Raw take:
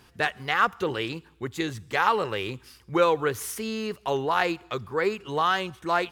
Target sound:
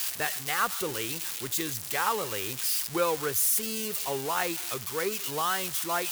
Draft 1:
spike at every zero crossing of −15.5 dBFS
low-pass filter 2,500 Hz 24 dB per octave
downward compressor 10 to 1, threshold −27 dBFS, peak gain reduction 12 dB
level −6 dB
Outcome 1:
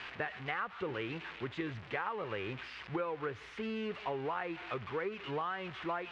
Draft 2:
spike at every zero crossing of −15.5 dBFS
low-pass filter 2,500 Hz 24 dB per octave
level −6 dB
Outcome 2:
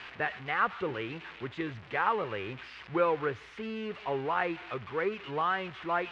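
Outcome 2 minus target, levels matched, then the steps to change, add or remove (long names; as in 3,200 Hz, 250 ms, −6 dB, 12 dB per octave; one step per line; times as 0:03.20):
2,000 Hz band +4.0 dB
remove: low-pass filter 2,500 Hz 24 dB per octave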